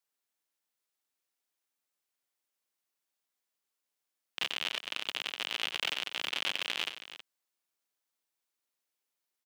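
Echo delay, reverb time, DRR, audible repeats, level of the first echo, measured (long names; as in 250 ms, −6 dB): 92 ms, no reverb audible, no reverb audible, 2, −11.5 dB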